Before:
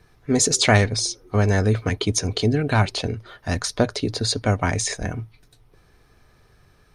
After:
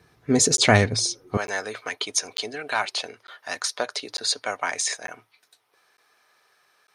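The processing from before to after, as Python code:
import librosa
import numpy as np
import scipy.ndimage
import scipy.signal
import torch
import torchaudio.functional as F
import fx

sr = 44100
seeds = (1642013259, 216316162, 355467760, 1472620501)

y = fx.highpass(x, sr, hz=fx.steps((0.0, 100.0), (1.37, 780.0)), slope=12)
y = fx.buffer_crackle(y, sr, first_s=0.57, period_s=0.9, block=512, kind='zero')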